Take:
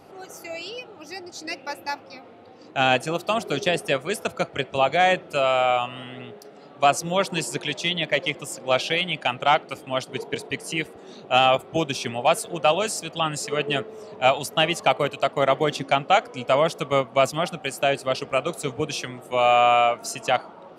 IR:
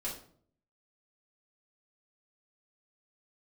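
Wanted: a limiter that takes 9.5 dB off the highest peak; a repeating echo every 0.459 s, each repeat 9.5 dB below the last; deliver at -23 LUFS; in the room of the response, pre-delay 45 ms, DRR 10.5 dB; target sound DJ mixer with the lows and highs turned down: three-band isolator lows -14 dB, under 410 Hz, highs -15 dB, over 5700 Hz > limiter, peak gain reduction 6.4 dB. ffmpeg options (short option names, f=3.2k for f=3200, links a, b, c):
-filter_complex "[0:a]alimiter=limit=-14.5dB:level=0:latency=1,aecho=1:1:459|918|1377|1836:0.335|0.111|0.0365|0.012,asplit=2[a][b];[1:a]atrim=start_sample=2205,adelay=45[c];[b][c]afir=irnorm=-1:irlink=0,volume=-12dB[d];[a][d]amix=inputs=2:normalize=0,acrossover=split=410 5700:gain=0.2 1 0.178[e][f][g];[e][f][g]amix=inputs=3:normalize=0,volume=7.5dB,alimiter=limit=-11dB:level=0:latency=1"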